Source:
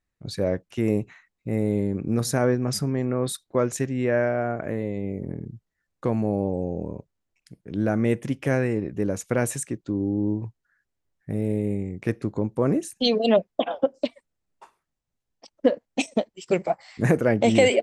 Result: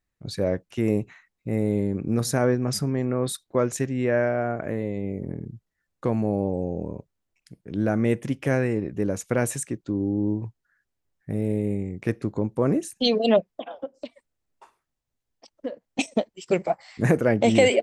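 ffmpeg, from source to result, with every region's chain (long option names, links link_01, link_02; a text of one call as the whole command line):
ffmpeg -i in.wav -filter_complex "[0:a]asettb=1/sr,asplit=3[link_01][link_02][link_03];[link_01]atrim=end=13.404[link_04];[link_02]atrim=start=13.4:end=15.99,asetpts=PTS-STARTPTS,afade=type=in:duration=0.004:curve=qsin,afade=type=out:start_time=2.586:duration=0.004:curve=qsin,bandreject=frequency=180:width=5.9,acompressor=threshold=-48dB:ratio=1.5:attack=3.2:release=140:knee=1:detection=peak[link_05];[link_03]atrim=start=15.986[link_06];[link_04][link_05]acrossfade=duration=0.004:curve1=hsin:curve2=qsin[link_07];[link_07][link_06]acrossfade=duration=0.004:curve1=qsin:curve2=hsin" out.wav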